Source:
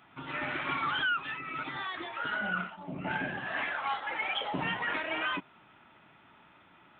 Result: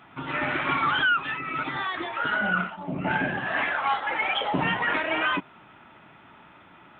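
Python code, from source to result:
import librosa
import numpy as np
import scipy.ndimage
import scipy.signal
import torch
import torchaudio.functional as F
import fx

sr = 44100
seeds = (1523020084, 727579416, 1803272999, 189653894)

y = fx.high_shelf(x, sr, hz=3800.0, db=-7.5)
y = y * 10.0 ** (8.5 / 20.0)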